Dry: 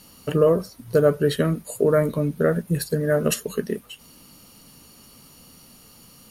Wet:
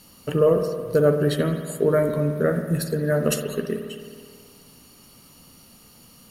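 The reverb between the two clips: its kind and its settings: spring tank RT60 1.9 s, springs 54 ms, chirp 35 ms, DRR 6.5 dB; trim -1.5 dB

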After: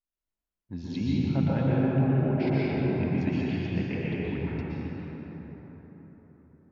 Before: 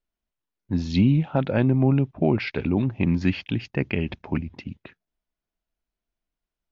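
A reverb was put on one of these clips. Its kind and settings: plate-style reverb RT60 4.7 s, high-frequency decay 0.4×, pre-delay 105 ms, DRR -8 dB; trim -13 dB

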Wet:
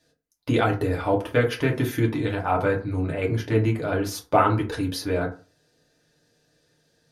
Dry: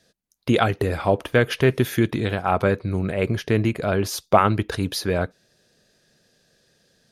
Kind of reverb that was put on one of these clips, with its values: FDN reverb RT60 0.35 s, low-frequency decay 1×, high-frequency decay 0.5×, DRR -2.5 dB; trim -7 dB

